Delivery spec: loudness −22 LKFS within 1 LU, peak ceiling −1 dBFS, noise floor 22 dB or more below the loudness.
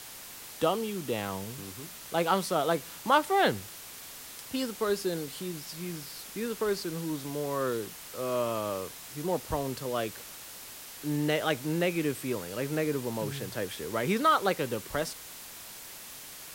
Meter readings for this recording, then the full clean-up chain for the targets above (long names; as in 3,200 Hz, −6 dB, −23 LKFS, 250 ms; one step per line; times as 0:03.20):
background noise floor −46 dBFS; target noise floor −53 dBFS; integrated loudness −31.0 LKFS; sample peak −9.0 dBFS; target loudness −22.0 LKFS
→ noise reduction from a noise print 7 dB
level +9 dB
brickwall limiter −1 dBFS